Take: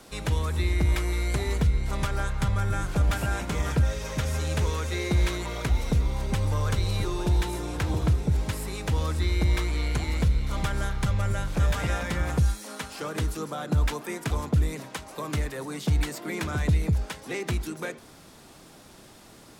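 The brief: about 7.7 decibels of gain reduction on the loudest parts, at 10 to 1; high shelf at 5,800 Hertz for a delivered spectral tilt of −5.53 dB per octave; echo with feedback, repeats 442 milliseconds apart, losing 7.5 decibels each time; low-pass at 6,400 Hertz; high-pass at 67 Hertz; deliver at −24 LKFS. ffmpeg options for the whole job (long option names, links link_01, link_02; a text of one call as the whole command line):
ffmpeg -i in.wav -af "highpass=67,lowpass=6400,highshelf=frequency=5800:gain=-6.5,acompressor=threshold=-27dB:ratio=10,aecho=1:1:442|884|1326|1768|2210:0.422|0.177|0.0744|0.0312|0.0131,volume=8.5dB" out.wav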